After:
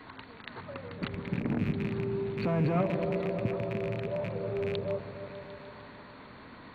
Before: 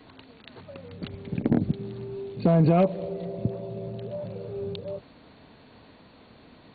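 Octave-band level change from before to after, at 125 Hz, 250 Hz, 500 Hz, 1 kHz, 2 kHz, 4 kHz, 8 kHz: −5.0 dB, −5.5 dB, −3.0 dB, −4.5 dB, +5.5 dB, 0.0 dB, can't be measured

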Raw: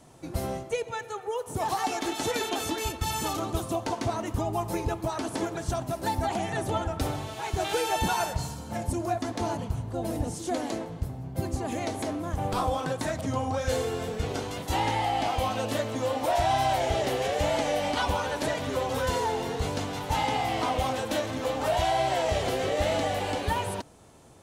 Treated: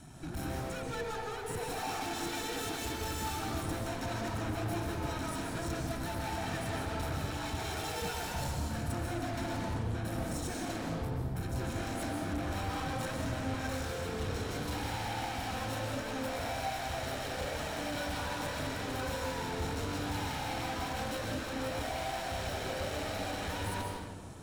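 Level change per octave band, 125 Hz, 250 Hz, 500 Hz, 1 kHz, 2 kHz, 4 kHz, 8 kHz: −4.0, −5.0, −10.0, −9.5, −4.0, −6.0, −5.5 decibels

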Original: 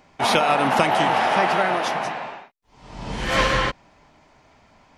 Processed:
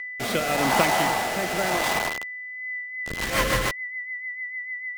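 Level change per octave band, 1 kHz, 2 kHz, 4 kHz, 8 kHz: −5.5, 0.0, −2.5, +5.0 decibels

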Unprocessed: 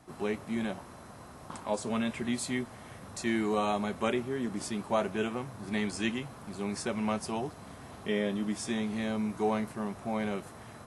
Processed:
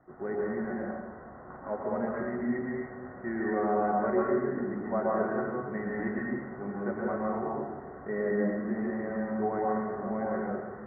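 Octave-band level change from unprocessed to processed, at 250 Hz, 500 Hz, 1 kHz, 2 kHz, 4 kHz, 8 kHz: +0.5 dB, +3.5 dB, +3.0 dB, 0.0 dB, below −40 dB, below −40 dB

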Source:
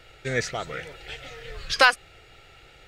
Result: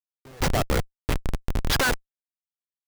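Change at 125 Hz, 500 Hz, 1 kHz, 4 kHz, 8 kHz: +9.0, −0.5, −4.0, −2.5, +4.0 decibels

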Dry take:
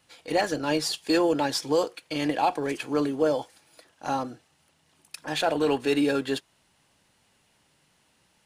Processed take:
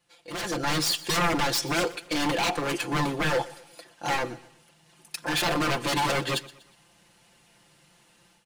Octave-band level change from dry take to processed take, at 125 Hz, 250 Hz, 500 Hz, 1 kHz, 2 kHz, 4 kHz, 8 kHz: +6.0, −3.5, −5.0, +1.0, +5.0, +4.0, +5.5 decibels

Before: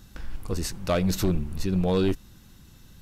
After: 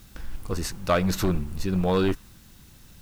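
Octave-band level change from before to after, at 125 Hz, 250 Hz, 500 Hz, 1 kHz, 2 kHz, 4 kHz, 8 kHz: −0.5, 0.0, +1.0, +5.5, +4.5, +0.5, 0.0 decibels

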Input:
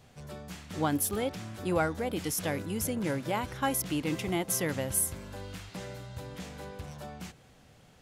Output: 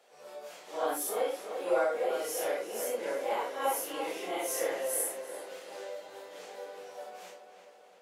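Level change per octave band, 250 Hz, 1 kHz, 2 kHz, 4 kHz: −12.0, +0.5, −2.5, −3.0 decibels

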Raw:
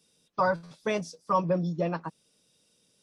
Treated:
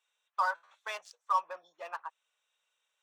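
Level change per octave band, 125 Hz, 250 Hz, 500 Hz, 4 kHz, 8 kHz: below −40 dB, below −40 dB, −16.5 dB, −3.5 dB, −6.5 dB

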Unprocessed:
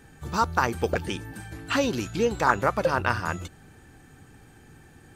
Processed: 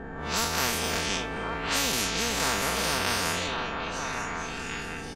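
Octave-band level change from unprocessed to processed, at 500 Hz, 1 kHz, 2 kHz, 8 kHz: −5.5, −3.5, +1.0, +11.5 decibels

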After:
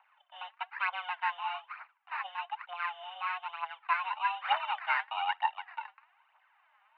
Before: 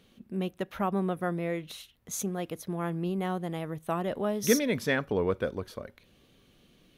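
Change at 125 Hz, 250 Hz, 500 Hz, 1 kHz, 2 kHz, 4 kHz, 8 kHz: below −40 dB, below −40 dB, −22.0 dB, +5.5 dB, +3.0 dB, +0.5 dB, below −40 dB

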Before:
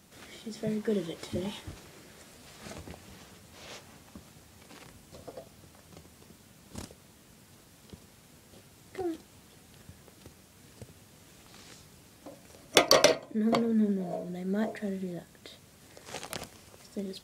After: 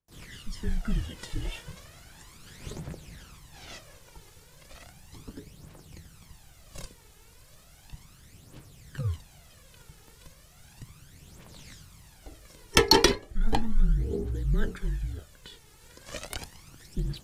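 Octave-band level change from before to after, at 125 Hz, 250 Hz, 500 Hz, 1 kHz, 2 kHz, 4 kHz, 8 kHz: +7.5, −3.5, −2.0, +2.0, +1.5, +2.5, +0.5 decibels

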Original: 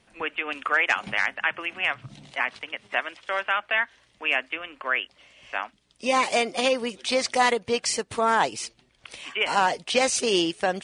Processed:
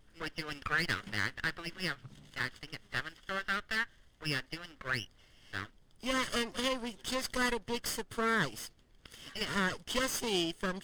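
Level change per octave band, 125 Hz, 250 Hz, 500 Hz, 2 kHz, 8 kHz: +2.5, −5.5, −12.0, −9.0, −10.0 decibels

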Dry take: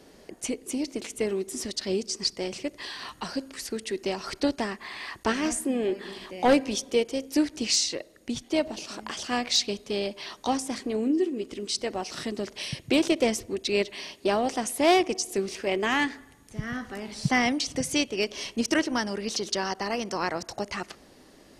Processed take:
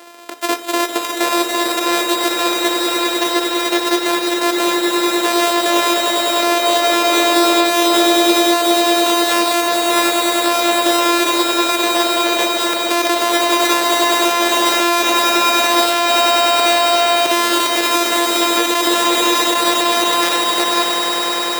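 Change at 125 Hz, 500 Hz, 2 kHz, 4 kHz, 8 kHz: below −10 dB, +11.5 dB, +14.5 dB, +16.5 dB, +13.5 dB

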